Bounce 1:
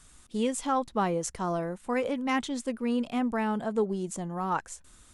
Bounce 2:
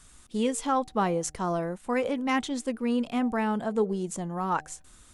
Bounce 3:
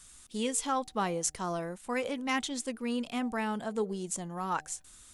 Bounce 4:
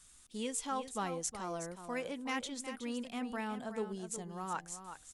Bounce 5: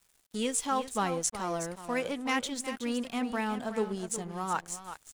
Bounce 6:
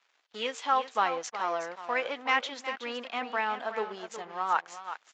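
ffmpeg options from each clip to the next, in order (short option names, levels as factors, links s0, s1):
-af "bandreject=f=152.4:t=h:w=4,bandreject=f=304.8:t=h:w=4,bandreject=f=457.2:t=h:w=4,bandreject=f=609.6:t=h:w=4,bandreject=f=762:t=h:w=4,volume=1.19"
-af "highshelf=f=2100:g=10,volume=0.473"
-af "aecho=1:1:368:0.316,volume=0.473"
-af "aeval=exprs='sgn(val(0))*max(abs(val(0))-0.00158,0)':c=same,volume=2.51"
-af "highpass=680,lowpass=3000,volume=2" -ar 16000 -c:a libvorbis -b:a 64k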